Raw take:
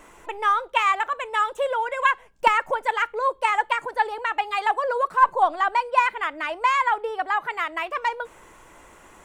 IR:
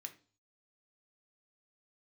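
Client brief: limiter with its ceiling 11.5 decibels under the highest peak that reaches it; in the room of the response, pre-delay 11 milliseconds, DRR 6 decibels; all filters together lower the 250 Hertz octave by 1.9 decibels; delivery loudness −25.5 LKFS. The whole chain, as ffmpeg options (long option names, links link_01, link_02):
-filter_complex "[0:a]equalizer=frequency=250:width_type=o:gain=-3,alimiter=limit=-15.5dB:level=0:latency=1,asplit=2[link_01][link_02];[1:a]atrim=start_sample=2205,adelay=11[link_03];[link_02][link_03]afir=irnorm=-1:irlink=0,volume=-1dB[link_04];[link_01][link_04]amix=inputs=2:normalize=0"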